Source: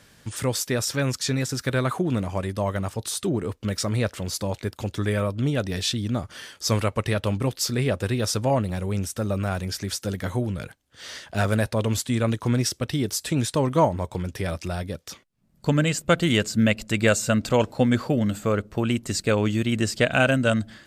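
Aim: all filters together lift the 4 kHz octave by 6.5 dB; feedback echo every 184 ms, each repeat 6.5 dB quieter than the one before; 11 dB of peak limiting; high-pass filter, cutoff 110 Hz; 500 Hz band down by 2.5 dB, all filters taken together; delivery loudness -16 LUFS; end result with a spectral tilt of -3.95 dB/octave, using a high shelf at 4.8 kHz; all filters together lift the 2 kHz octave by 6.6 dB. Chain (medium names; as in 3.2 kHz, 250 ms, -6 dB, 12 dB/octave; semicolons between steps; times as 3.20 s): high-pass 110 Hz; peaking EQ 500 Hz -3.5 dB; peaking EQ 2 kHz +7.5 dB; peaking EQ 4 kHz +8 dB; treble shelf 4.8 kHz -3.5 dB; peak limiter -11 dBFS; feedback delay 184 ms, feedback 47%, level -6.5 dB; trim +8.5 dB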